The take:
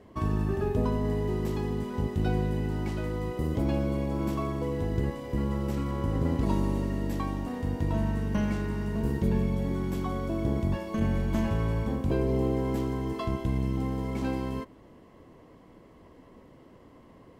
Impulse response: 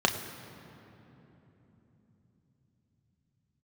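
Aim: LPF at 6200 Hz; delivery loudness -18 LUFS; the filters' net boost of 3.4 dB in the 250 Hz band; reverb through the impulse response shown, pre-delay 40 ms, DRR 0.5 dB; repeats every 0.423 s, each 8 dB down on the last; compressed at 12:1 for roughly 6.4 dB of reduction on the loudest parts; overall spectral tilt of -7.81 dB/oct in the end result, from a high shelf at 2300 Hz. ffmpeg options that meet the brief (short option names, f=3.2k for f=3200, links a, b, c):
-filter_complex "[0:a]lowpass=6.2k,equalizer=f=250:t=o:g=4.5,highshelf=f=2.3k:g=-7,acompressor=threshold=-26dB:ratio=12,aecho=1:1:423|846|1269|1692|2115:0.398|0.159|0.0637|0.0255|0.0102,asplit=2[a][b];[1:a]atrim=start_sample=2205,adelay=40[c];[b][c]afir=irnorm=-1:irlink=0,volume=-13.5dB[d];[a][d]amix=inputs=2:normalize=0,volume=9dB"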